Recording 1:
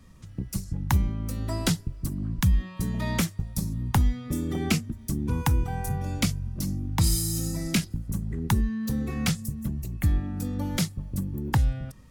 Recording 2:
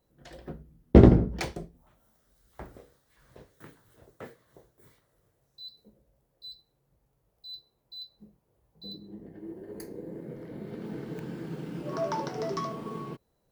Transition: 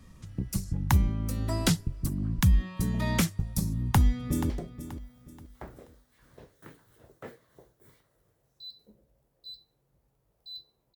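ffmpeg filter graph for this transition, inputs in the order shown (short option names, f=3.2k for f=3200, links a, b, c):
-filter_complex "[0:a]apad=whole_dur=10.95,atrim=end=10.95,atrim=end=4.502[a];[1:a]atrim=start=1.478:end=7.93[b];[a][b]acrossfade=d=0.004:c1=hsin:c2=hsin,asplit=2[c][d];[d]afade=t=in:st=3.71:d=0.01,afade=t=out:st=4.5:d=0.01,aecho=0:1:480|960|1440|1920:0.237137|0.0829981|0.0290493|0.0101673[e];[c][e]amix=inputs=2:normalize=0"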